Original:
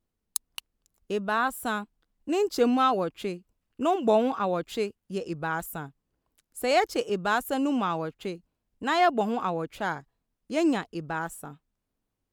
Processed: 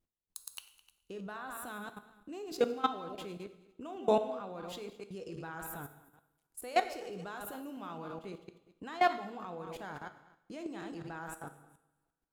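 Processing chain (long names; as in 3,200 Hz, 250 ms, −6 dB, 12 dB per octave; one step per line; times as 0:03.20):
feedback delay that plays each chunk backwards 105 ms, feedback 43%, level −8.5 dB
output level in coarse steps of 20 dB
coupled-rooms reverb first 0.77 s, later 2.1 s, from −23 dB, DRR 9.5 dB
level −3.5 dB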